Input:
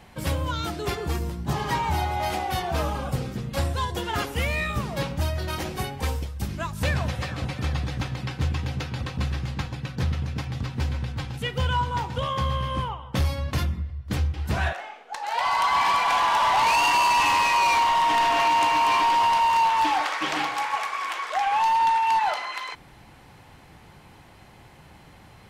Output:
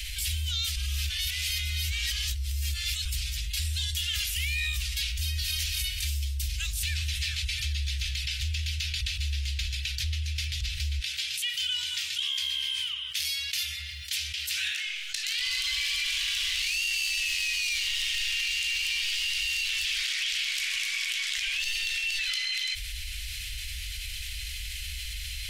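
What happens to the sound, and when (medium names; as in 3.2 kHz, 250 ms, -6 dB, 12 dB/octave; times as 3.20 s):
0.76–3.05 s: reverse
5.14–5.57 s: echo throw 240 ms, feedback 30%, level -6 dB
10.99–14.86 s: high-pass 190 Hz 24 dB/octave
whole clip: inverse Chebyshev band-stop 170–920 Hz, stop band 60 dB; peak limiter -27.5 dBFS; level flattener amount 70%; trim +5.5 dB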